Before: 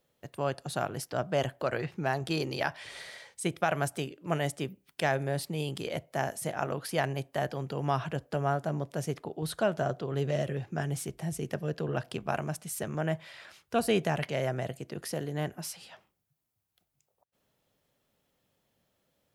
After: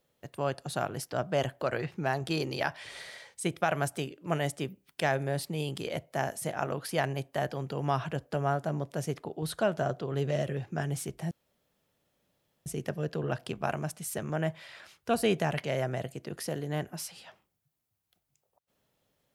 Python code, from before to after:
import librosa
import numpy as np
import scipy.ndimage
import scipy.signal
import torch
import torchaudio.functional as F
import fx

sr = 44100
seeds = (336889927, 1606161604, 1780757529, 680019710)

y = fx.edit(x, sr, fx.insert_room_tone(at_s=11.31, length_s=1.35), tone=tone)